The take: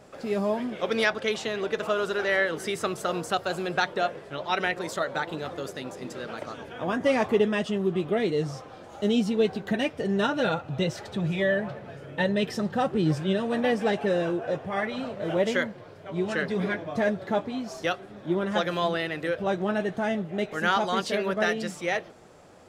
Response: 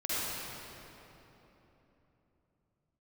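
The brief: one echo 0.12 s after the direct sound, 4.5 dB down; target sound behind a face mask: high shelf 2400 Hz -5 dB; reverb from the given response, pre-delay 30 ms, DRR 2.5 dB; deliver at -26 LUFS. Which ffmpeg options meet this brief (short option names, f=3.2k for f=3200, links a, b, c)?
-filter_complex "[0:a]aecho=1:1:120:0.596,asplit=2[a][b];[1:a]atrim=start_sample=2205,adelay=30[c];[b][c]afir=irnorm=-1:irlink=0,volume=-10.5dB[d];[a][d]amix=inputs=2:normalize=0,highshelf=f=2.4k:g=-5,volume=-1.5dB"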